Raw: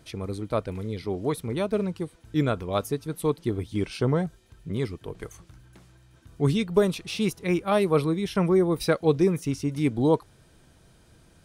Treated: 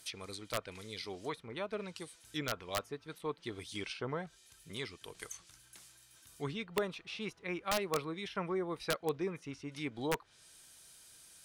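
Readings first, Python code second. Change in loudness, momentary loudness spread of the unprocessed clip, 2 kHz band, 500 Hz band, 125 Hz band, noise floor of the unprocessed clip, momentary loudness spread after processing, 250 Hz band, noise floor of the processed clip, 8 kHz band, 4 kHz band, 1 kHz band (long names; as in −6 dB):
−13.5 dB, 11 LU, −5.5 dB, −14.0 dB, −19.0 dB, −57 dBFS, 19 LU, −17.0 dB, −64 dBFS, −5.0 dB, −4.5 dB, −9.0 dB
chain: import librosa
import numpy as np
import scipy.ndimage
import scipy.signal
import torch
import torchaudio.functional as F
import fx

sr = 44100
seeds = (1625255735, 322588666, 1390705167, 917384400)

y = scipy.signal.lfilter([1.0, -0.97], [1.0], x)
y = fx.env_lowpass_down(y, sr, base_hz=1600.0, full_db=-41.5)
y = (np.mod(10.0 ** (32.5 / 20.0) * y + 1.0, 2.0) - 1.0) / 10.0 ** (32.5 / 20.0)
y = F.gain(torch.from_numpy(y), 9.5).numpy()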